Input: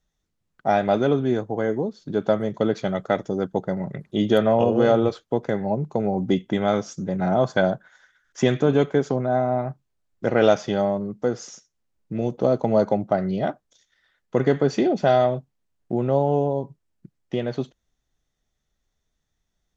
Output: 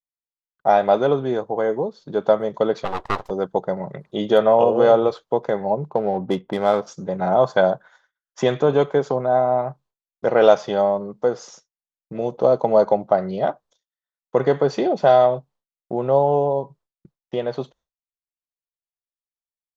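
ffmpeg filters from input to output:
-filter_complex "[0:a]asplit=3[a][b][c];[a]afade=t=out:st=2.84:d=0.02[d];[b]aeval=exprs='abs(val(0))':c=same,afade=t=in:st=2.84:d=0.02,afade=t=out:st=3.29:d=0.02[e];[c]afade=t=in:st=3.29:d=0.02[f];[d][e][f]amix=inputs=3:normalize=0,asplit=3[g][h][i];[g]afade=t=out:st=5.89:d=0.02[j];[h]adynamicsmooth=sensitivity=6.5:basefreq=1.6k,afade=t=in:st=5.89:d=0.02,afade=t=out:st=6.86:d=0.02[k];[i]afade=t=in:st=6.86:d=0.02[l];[j][k][l]amix=inputs=3:normalize=0,equalizer=f=125:t=o:w=1:g=8,equalizer=f=250:t=o:w=1:g=-3,equalizer=f=500:t=o:w=1:g=8,equalizer=f=1k:t=o:w=1:g=11,equalizer=f=4k:t=o:w=1:g=6,agate=range=-33dB:threshold=-40dB:ratio=3:detection=peak,equalizer=f=110:w=2.8:g=-12,volume=-5dB"

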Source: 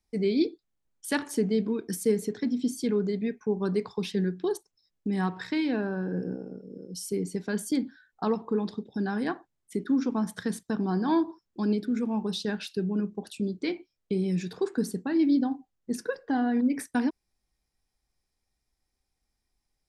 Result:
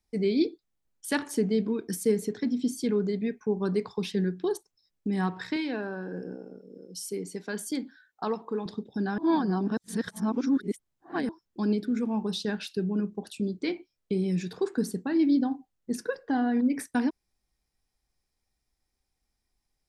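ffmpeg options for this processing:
-filter_complex "[0:a]asettb=1/sr,asplit=3[a][b][c];[a]atrim=end=5.564[d];[b]atrim=start=5.56:end=8.66,asetpts=PTS-STARTPTS,afade=t=in:d=0.004:c=qsin,afade=t=out:st=3.096:d=0.004:c=qsin,highpass=f=400:p=1[e];[c]atrim=start=8.656[f];[d][e]acrossfade=d=0.004:c1=hsin:c2=qsin[g];[g][f]acrossfade=d=0.004:c1=qsin:c2=hsin,asplit=3[h][i][j];[h]atrim=end=9.182[k];[i]atrim=start=9.178:end=11.292,asetpts=PTS-STARTPTS,areverse[l];[j]atrim=start=11.288[m];[k][l]acrossfade=d=0.004:c1=hsin:c2=hsin[n];[n][m]acrossfade=d=0.004:c1=hsin:c2=hsin"

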